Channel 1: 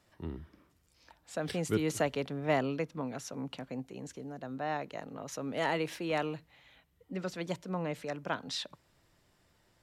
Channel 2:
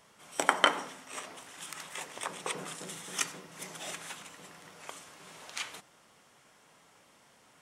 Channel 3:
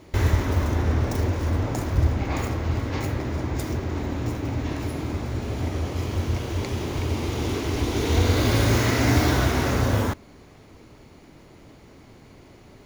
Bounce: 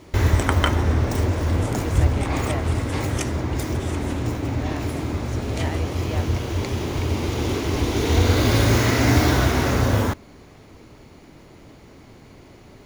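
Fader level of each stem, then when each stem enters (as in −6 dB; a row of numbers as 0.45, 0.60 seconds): −2.5, +0.5, +2.5 decibels; 0.00, 0.00, 0.00 seconds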